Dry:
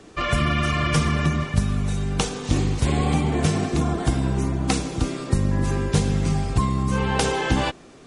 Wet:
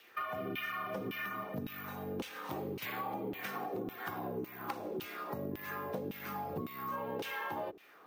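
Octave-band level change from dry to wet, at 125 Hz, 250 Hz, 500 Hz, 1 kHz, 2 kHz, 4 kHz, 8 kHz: −27.0, −18.5, −12.0, −11.5, −12.5, −18.5, −26.5 decibels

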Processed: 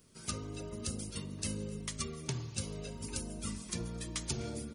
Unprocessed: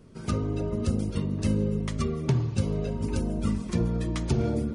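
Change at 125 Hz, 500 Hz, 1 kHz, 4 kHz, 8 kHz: −14.5, −13.0, −9.5, +0.5, +5.0 decibels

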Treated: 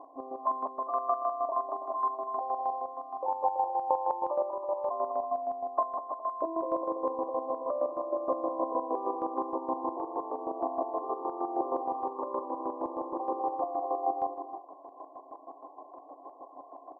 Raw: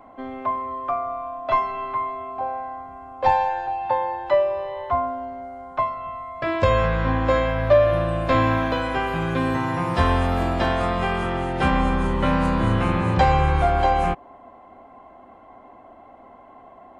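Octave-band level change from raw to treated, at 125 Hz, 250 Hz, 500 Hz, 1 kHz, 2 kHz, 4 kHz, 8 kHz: below −40 dB, −13.5 dB, −9.0 dB, −8.0 dB, below −40 dB, below −40 dB, can't be measured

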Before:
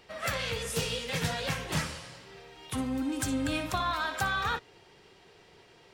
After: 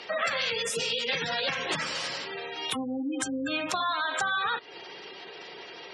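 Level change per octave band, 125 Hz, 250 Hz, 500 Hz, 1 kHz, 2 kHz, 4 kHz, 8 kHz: −11.5, −1.0, +3.5, +2.5, +4.0, +6.0, +1.5 decibels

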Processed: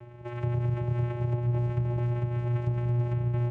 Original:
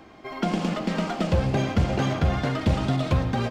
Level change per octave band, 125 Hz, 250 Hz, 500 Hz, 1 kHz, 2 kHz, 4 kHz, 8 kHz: 0.0 dB, −11.5 dB, −8.0 dB, −12.0 dB, −14.0 dB, below −20 dB, below −25 dB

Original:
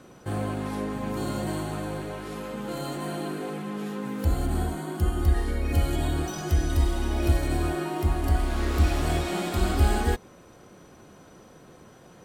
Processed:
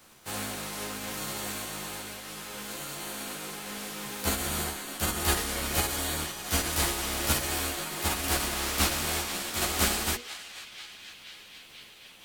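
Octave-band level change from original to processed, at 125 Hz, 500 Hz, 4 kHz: −11.5, −5.5, +8.0 decibels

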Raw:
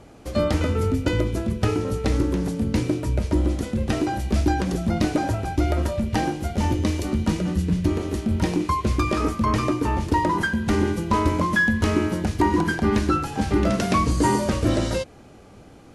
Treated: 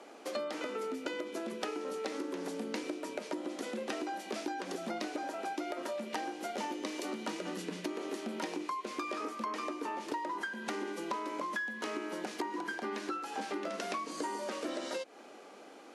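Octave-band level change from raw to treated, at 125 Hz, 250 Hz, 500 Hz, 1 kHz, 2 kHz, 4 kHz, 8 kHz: −34.5, −17.5, −12.0, −12.0, −12.5, −9.5, −11.0 decibels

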